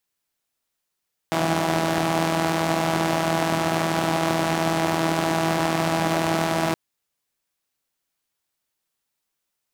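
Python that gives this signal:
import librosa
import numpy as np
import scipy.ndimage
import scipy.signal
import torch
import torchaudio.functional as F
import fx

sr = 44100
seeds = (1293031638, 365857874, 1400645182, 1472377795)

y = fx.engine_four(sr, seeds[0], length_s=5.42, rpm=4900, resonances_hz=(190.0, 320.0, 650.0))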